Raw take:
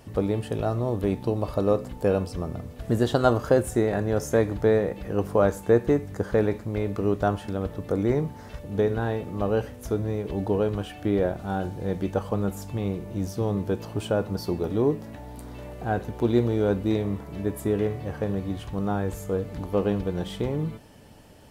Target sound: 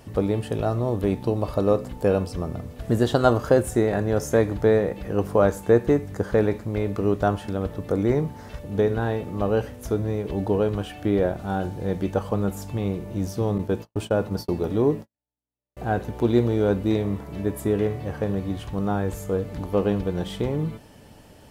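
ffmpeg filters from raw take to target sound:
ffmpeg -i in.wav -filter_complex "[0:a]asettb=1/sr,asplit=3[link_01][link_02][link_03];[link_01]atrim=end=13.584[link_04];[link_02]atrim=start=13.58:end=15.77,asetpts=PTS-STARTPTS,afade=type=in:duration=0.004:curve=qsin,afade=type=out:start_time=2.186:duration=0.004:curve=qsin,agate=range=-57dB:threshold=-31dB:ratio=16:detection=peak[link_05];[link_03]atrim=start=15.766[link_06];[link_04][link_05]acrossfade=duration=0.004:curve1=hsin:curve2=qsin[link_07];[link_07][link_06]acrossfade=duration=0.004:curve1=qsin:curve2=hsin,volume=2dB" out.wav

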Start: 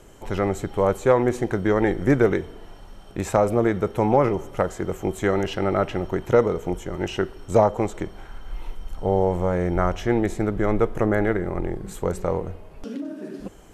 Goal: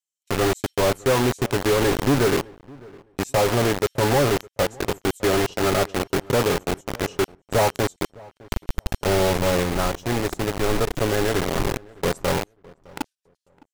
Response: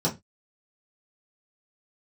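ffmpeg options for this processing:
-filter_complex "[0:a]agate=range=-26dB:threshold=-30dB:ratio=16:detection=peak,highshelf=frequency=2900:gain=-11,aecho=1:1:7.3:0.52,acrossover=split=3900[link_01][link_02];[link_01]acrusher=bits=3:mix=0:aa=0.000001[link_03];[link_03][link_02]amix=inputs=2:normalize=0,asoftclip=type=tanh:threshold=-20.5dB,asettb=1/sr,asplit=3[link_04][link_05][link_06];[link_04]atrim=end=9.634[link_07];[link_05]atrim=start=9.63:end=11.34,asetpts=PTS-STARTPTS,afade=type=in:duration=0.004:curve=qsin,afade=type=out:start_time=1.706:duration=0.004:curve=qsin,acrusher=bits=2:mode=log:mix=0:aa=0.000001[link_08];[link_06]atrim=start=11.336[link_09];[link_07][link_08]acrossfade=duration=0.004:curve1=hsin:curve2=qsin[link_10];[link_10][link_09]acrossfade=duration=0.004:curve1=qsin:curve2=hsin,asplit=2[link_11][link_12];[link_12]adelay=610,lowpass=frequency=1700:poles=1,volume=-23dB,asplit=2[link_13][link_14];[link_14]adelay=610,lowpass=frequency=1700:poles=1,volume=0.19[link_15];[link_13][link_15]amix=inputs=2:normalize=0[link_16];[link_11][link_16]amix=inputs=2:normalize=0,volume=5.5dB"

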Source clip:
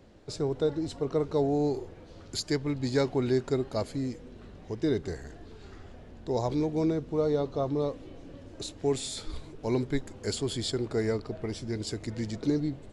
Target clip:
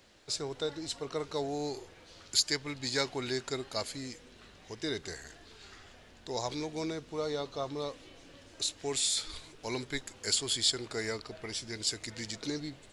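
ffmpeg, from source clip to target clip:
ffmpeg -i in.wav -af "tiltshelf=frequency=970:gain=-10,volume=-2dB" out.wav

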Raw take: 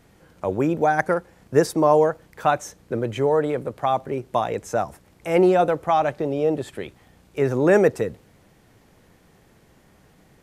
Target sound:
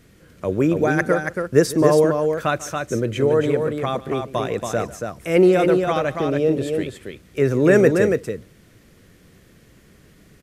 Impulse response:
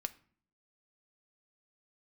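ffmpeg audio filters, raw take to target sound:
-af "equalizer=frequency=830:width=2.2:gain=-13.5,aecho=1:1:146|280:0.119|0.562,volume=4dB"

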